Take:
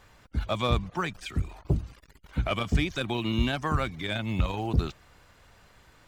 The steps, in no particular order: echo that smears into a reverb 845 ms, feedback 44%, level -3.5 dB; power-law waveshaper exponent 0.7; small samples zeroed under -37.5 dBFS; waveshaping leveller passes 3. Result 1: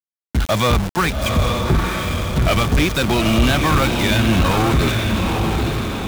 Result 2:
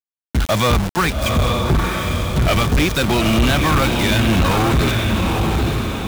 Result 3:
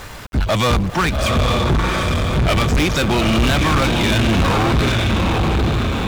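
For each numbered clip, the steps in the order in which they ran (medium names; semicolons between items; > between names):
small samples zeroed > waveshaping leveller > echo that smears into a reverb > power-law waveshaper; small samples zeroed > power-law waveshaper > echo that smears into a reverb > waveshaping leveller; echo that smears into a reverb > power-law waveshaper > waveshaping leveller > small samples zeroed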